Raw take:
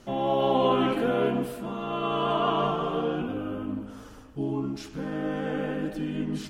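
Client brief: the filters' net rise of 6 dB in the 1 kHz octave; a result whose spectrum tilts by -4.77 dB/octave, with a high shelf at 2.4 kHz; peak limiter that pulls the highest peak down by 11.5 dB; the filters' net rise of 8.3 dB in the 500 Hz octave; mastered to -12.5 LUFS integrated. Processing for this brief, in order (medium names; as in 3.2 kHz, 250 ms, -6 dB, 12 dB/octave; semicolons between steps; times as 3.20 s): peaking EQ 500 Hz +8.5 dB; peaking EQ 1 kHz +3.5 dB; treble shelf 2.4 kHz +6.5 dB; trim +13.5 dB; peak limiter -3 dBFS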